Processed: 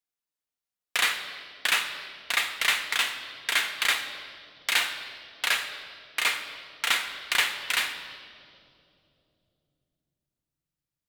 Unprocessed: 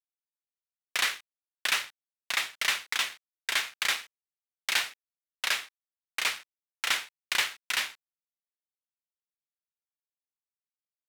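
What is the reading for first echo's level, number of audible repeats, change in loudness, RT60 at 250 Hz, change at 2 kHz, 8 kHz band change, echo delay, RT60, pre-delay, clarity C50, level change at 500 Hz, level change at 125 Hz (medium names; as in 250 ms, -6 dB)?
no echo, no echo, +3.0 dB, 4.5 s, +4.0 dB, +1.5 dB, no echo, 2.9 s, 4 ms, 7.5 dB, +4.5 dB, no reading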